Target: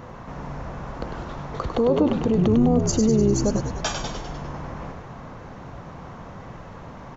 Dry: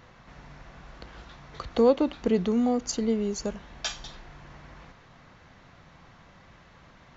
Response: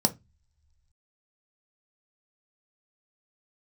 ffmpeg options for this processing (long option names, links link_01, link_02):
-filter_complex "[0:a]equalizer=frequency=125:width_type=o:width=1:gain=5,equalizer=frequency=250:width_type=o:width=1:gain=5,equalizer=frequency=500:width_type=o:width=1:gain=5,equalizer=frequency=1000:width_type=o:width=1:gain=5,equalizer=frequency=2000:width_type=o:width=1:gain=-4,equalizer=frequency=4000:width_type=o:width=1:gain=-7,alimiter=limit=-22dB:level=0:latency=1:release=47,asplit=2[link_01][link_02];[link_02]asplit=8[link_03][link_04][link_05][link_06][link_07][link_08][link_09][link_10];[link_03]adelay=100,afreqshift=-74,volume=-6dB[link_11];[link_04]adelay=200,afreqshift=-148,volume=-10.7dB[link_12];[link_05]adelay=300,afreqshift=-222,volume=-15.5dB[link_13];[link_06]adelay=400,afreqshift=-296,volume=-20.2dB[link_14];[link_07]adelay=500,afreqshift=-370,volume=-24.9dB[link_15];[link_08]adelay=600,afreqshift=-444,volume=-29.7dB[link_16];[link_09]adelay=700,afreqshift=-518,volume=-34.4dB[link_17];[link_10]adelay=800,afreqshift=-592,volume=-39.1dB[link_18];[link_11][link_12][link_13][link_14][link_15][link_16][link_17][link_18]amix=inputs=8:normalize=0[link_19];[link_01][link_19]amix=inputs=2:normalize=0,volume=9dB"